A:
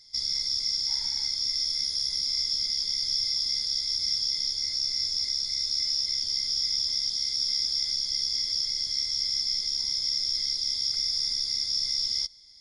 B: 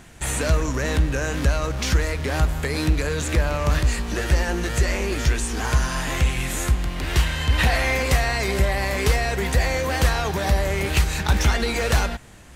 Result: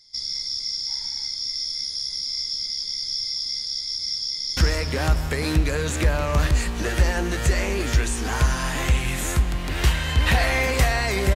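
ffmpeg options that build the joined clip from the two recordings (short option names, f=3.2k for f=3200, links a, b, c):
-filter_complex "[0:a]apad=whole_dur=11.35,atrim=end=11.35,atrim=end=4.572[a];[1:a]atrim=start=1.888:end=8.67[b];[a][b]acrossfade=d=0.004:c1=hsin:c2=hsin,asplit=2[c][d];[d]afade=t=in:st=4.32:d=0.01,afade=t=out:st=4.57:d=0.01,aecho=0:1:170|340|510|680|850|1020|1190|1360|1530:0.707946|0.424767|0.25486|0.152916|0.0917498|0.0550499|0.0330299|0.019818|0.0118908[e];[c][e]amix=inputs=2:normalize=0"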